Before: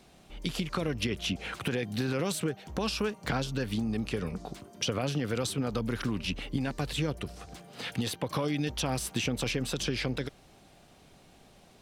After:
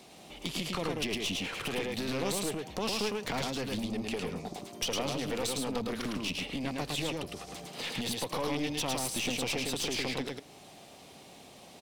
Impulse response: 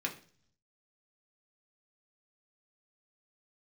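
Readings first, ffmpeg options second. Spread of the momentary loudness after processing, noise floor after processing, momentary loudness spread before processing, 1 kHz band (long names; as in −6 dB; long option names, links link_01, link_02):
16 LU, −53 dBFS, 7 LU, +0.5 dB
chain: -filter_complex "[0:a]asplit=2[link_01][link_02];[link_02]acompressor=threshold=-45dB:ratio=6,volume=1dB[link_03];[link_01][link_03]amix=inputs=2:normalize=0,highpass=frequency=300:poles=1,aecho=1:1:108:0.708,asplit=2[link_04][link_05];[1:a]atrim=start_sample=2205,adelay=80[link_06];[link_05][link_06]afir=irnorm=-1:irlink=0,volume=-24dB[link_07];[link_04][link_07]amix=inputs=2:normalize=0,aeval=exprs='clip(val(0),-1,0.0211)':channel_layout=same,equalizer=frequency=1500:width=2.9:gain=-7.5"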